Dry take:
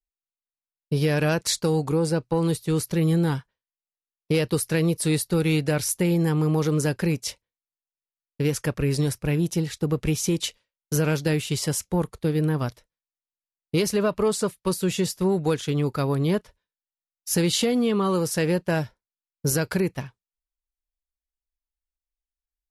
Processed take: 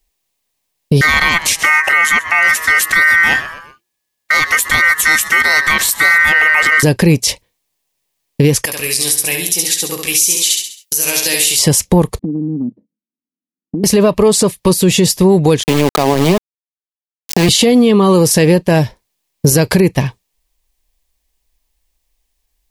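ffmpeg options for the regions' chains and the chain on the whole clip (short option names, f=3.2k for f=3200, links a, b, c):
-filter_complex "[0:a]asettb=1/sr,asplit=3[a][b][c];[a]atrim=end=1.014[d];[b]atrim=start=1.01:end=6.83,asetpts=PTS-STARTPTS,afade=t=in:d=0.004:c=qsin,afade=t=out:st=5.816:d=0.004:c=qsin,aeval=exprs='val(0)*sin(2*PI*1700*n/s)':c=same,asplit=4[e][f][g][h];[f]adelay=125,afreqshift=-120,volume=-20dB[i];[g]adelay=250,afreqshift=-240,volume=-27.3dB[j];[h]adelay=375,afreqshift=-360,volume=-34.7dB[k];[e][i][j][k]amix=inputs=4:normalize=0,atrim=end_sample=256662[l];[c]atrim=start=6.826[m];[d][l]acrossfade=d=0.004:c1=hsin:c2=qsin[n];[n][m]acrossfade=d=0.004:c1=qsin:c2=hsin,asettb=1/sr,asplit=3[o][p][q];[o]atrim=end=8.654[r];[p]atrim=start=8.65:end=11.59,asetpts=PTS-STARTPTS,afade=t=in:d=0.004:c=qsin,afade=t=out:st=2.936:d=0.004:c=qsin,aderivative,asplit=2[s][t];[t]adelay=16,volume=-8dB[u];[s][u]amix=inputs=2:normalize=0,atrim=end_sample=129654,aecho=1:1:67|134|201|268|335:0.562|0.231|0.0945|0.0388|0.0159,atrim=end_sample=129654[v];[q]atrim=start=11.586[w];[r][v]acrossfade=d=0.004:c1=hsin:c2=qsin[x];[x][w]acrossfade=d=0.004:c1=qsin:c2=hsin,asettb=1/sr,asplit=3[y][z][aa];[y]atrim=end=12.194[ab];[z]atrim=start=12.19:end=13.84,asetpts=PTS-STARTPTS,afade=t=in:d=0.004:c=qsin,afade=t=out:st=1.646:d=0.004:c=qsin,asuperpass=centerf=240:order=4:qfactor=2.5,acompressor=threshold=-41dB:ratio=6:attack=3.2:release=140:knee=1:detection=peak[ac];[aa]atrim=start=13.836[ad];[ab][ac]acrossfade=d=0.004:c1=hsin:c2=qsin[ae];[ae][ad]acrossfade=d=0.004:c1=qsin:c2=hsin,asettb=1/sr,asplit=3[af][ag][ah];[af]atrim=end=15.634[ai];[ag]atrim=start=15.63:end=17.49,asetpts=PTS-STARTPTS,afade=t=in:d=0.004:c=qsin,afade=t=out:st=1.856:d=0.004:c=qsin,acompressor=threshold=-24dB:ratio=2.5:attack=3.2:release=140:knee=1:detection=peak,highpass=f=190:w=0.5412,highpass=f=190:w=1.3066,equalizer=f=310:t=q:w=4:g=-6,equalizer=f=510:t=q:w=4:g=-7,equalizer=f=740:t=q:w=4:g=7,equalizer=f=2k:t=q:w=4:g=-4,equalizer=f=3.5k:t=q:w=4:g=-10,lowpass=f=5.1k:w=0.5412,lowpass=f=5.1k:w=1.3066,aeval=exprs='val(0)*gte(abs(val(0)),0.0251)':c=same[aj];[ah]atrim=start=17.486[ak];[ai][aj]acrossfade=d=0.004:c1=hsin:c2=qsin[al];[al][ak]acrossfade=d=0.004:c1=qsin:c2=hsin,equalizer=f=1.4k:w=5.8:g=-13.5,acompressor=threshold=-31dB:ratio=6,alimiter=level_in=26dB:limit=-1dB:release=50:level=0:latency=1,volume=-1dB"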